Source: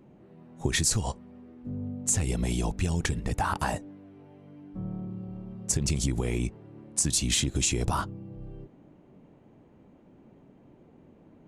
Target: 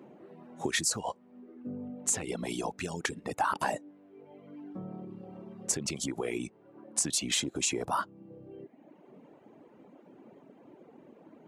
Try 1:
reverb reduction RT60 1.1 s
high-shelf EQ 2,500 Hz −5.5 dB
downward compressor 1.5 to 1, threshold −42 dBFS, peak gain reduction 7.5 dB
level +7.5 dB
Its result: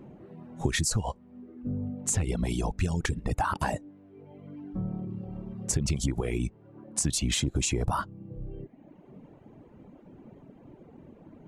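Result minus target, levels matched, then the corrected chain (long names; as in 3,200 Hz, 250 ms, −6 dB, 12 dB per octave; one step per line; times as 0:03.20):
250 Hz band +3.0 dB
reverb reduction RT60 1.1 s
high-shelf EQ 2,500 Hz −5.5 dB
downward compressor 1.5 to 1, threshold −42 dBFS, peak gain reduction 7.5 dB
high-pass filter 290 Hz 12 dB per octave
level +7.5 dB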